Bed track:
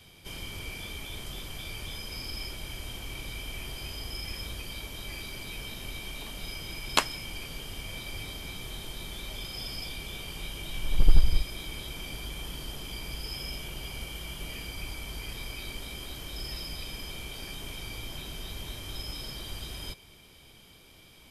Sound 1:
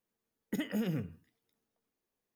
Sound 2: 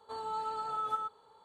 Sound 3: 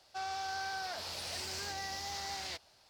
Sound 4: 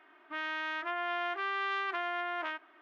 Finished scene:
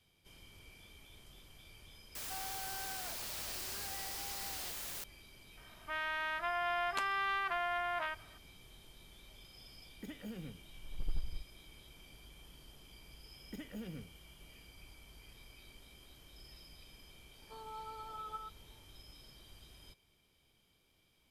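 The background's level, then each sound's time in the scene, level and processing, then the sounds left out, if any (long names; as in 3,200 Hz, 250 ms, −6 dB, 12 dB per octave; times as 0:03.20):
bed track −18.5 dB
0:02.15: mix in 3 −8 dB + bit-depth reduction 6 bits, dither triangular
0:05.57: mix in 4 −2 dB + low shelf with overshoot 400 Hz −9.5 dB, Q 1.5
0:09.50: mix in 1 −12.5 dB
0:13.00: mix in 1 −12 dB
0:17.41: mix in 2 −10 dB + elliptic high-pass filter 160 Hz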